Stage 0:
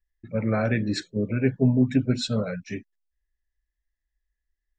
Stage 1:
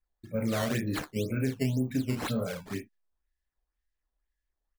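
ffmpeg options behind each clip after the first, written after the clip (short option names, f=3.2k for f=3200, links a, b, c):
-filter_complex "[0:a]asplit=2[a][b];[b]aecho=0:1:31|57:0.596|0.282[c];[a][c]amix=inputs=2:normalize=0,acrusher=samples=10:mix=1:aa=0.000001:lfo=1:lforange=16:lforate=2,acompressor=threshold=-21dB:ratio=6,volume=-4dB"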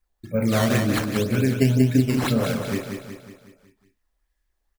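-af "aecho=1:1:184|368|552|736|920|1104:0.501|0.256|0.13|0.0665|0.0339|0.0173,volume=8dB"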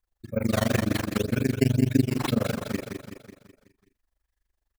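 -af "tremolo=f=24:d=1"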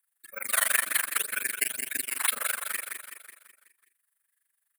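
-af "highpass=f=1.6k:t=q:w=1.8,highshelf=f=7.5k:t=q:w=3:g=9.5,volume=2dB"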